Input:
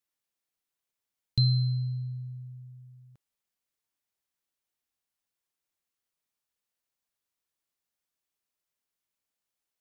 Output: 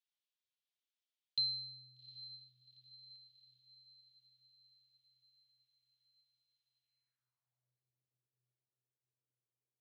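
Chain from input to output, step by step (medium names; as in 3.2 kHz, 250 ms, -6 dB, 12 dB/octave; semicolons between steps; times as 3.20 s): echo that smears into a reverb 799 ms, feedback 56%, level -15 dB; band-pass sweep 3.4 kHz -> 390 Hz, 6.78–7.86 s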